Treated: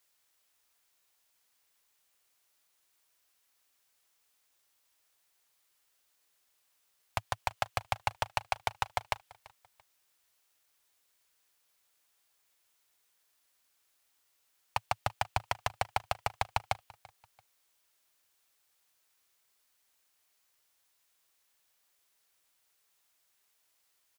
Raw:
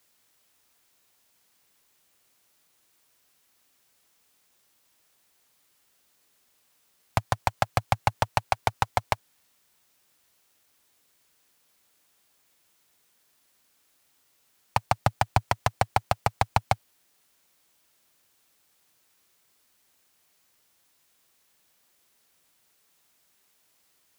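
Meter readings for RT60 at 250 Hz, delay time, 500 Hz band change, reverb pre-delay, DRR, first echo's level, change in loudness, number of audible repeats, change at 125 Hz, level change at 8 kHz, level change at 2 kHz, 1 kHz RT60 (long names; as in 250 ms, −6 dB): no reverb audible, 338 ms, −9.0 dB, no reverb audible, no reverb audible, −22.5 dB, −8.0 dB, 2, −13.0 dB, −6.5 dB, −5.5 dB, no reverb audible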